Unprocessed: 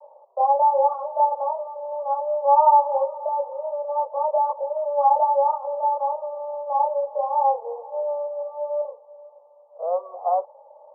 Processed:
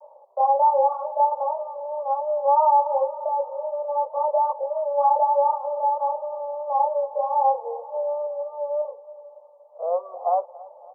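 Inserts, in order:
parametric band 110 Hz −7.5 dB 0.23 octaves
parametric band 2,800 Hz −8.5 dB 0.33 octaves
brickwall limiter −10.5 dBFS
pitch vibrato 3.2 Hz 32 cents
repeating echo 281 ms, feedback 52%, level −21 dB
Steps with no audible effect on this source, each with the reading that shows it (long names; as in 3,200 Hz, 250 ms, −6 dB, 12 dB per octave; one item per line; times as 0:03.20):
parametric band 110 Hz: nothing at its input below 450 Hz
parametric band 2,800 Hz: nothing at its input above 1,300 Hz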